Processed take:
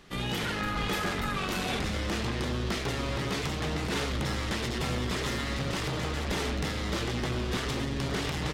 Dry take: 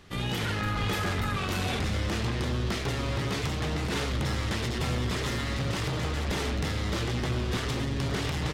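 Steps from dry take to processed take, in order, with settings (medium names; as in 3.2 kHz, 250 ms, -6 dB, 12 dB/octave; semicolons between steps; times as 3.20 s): peaking EQ 96 Hz -14 dB 0.4 oct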